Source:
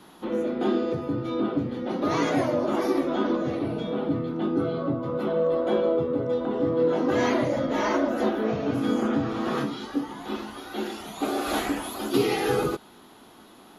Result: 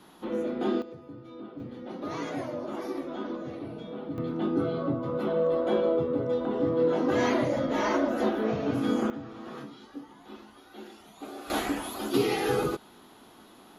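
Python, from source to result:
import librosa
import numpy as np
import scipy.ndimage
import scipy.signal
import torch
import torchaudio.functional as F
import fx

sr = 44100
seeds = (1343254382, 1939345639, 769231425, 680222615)

y = fx.gain(x, sr, db=fx.steps((0.0, -3.5), (0.82, -16.5), (1.6, -10.0), (4.18, -2.0), (9.1, -14.0), (11.5, -2.5)))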